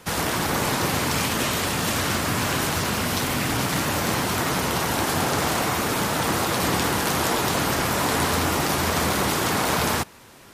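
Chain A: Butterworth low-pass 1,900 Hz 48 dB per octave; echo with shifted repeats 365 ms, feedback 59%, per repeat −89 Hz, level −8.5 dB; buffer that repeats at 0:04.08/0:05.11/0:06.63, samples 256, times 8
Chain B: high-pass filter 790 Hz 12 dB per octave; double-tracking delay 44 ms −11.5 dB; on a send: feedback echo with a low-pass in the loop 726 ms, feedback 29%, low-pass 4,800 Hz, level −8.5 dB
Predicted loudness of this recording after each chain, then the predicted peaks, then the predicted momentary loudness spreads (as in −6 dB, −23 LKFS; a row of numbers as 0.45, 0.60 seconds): −24.5, −24.0 LKFS; −11.0, −7.0 dBFS; 3, 2 LU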